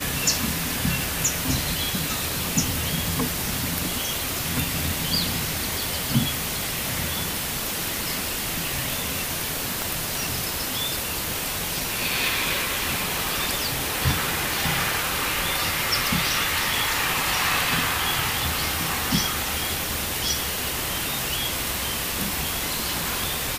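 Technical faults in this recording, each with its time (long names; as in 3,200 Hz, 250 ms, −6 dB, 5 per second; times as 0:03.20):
0:09.82: click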